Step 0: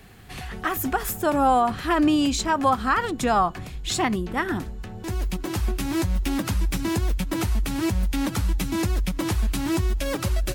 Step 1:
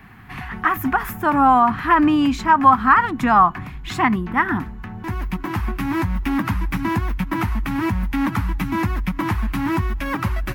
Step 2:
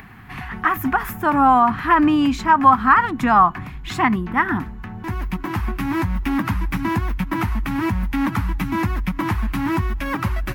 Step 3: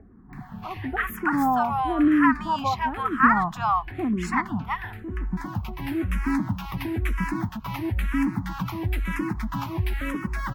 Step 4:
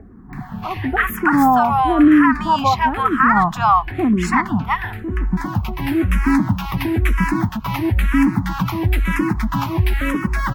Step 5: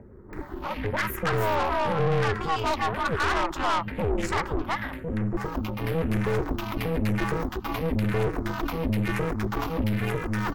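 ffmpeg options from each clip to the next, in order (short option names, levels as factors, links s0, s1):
-af "equalizer=f=125:t=o:w=1:g=5,equalizer=f=250:t=o:w=1:g=8,equalizer=f=500:t=o:w=1:g=-10,equalizer=f=1000:t=o:w=1:g=12,equalizer=f=2000:t=o:w=1:g=8,equalizer=f=4000:t=o:w=1:g=-5,equalizer=f=8000:t=o:w=1:g=-11,volume=0.891"
-af "acompressor=mode=upward:threshold=0.0126:ratio=2.5"
-filter_complex "[0:a]acrossover=split=840[s0][s1];[s1]adelay=330[s2];[s0][s2]amix=inputs=2:normalize=0,asplit=2[s3][s4];[s4]afreqshift=-1[s5];[s3][s5]amix=inputs=2:normalize=1,volume=0.794"
-af "alimiter=level_in=4.22:limit=0.891:release=50:level=0:latency=1,volume=0.668"
-af "aeval=exprs='val(0)*sin(2*PI*160*n/s)':c=same,aeval=exprs='(tanh(10*val(0)+0.5)-tanh(0.5))/10':c=same,volume=0.891"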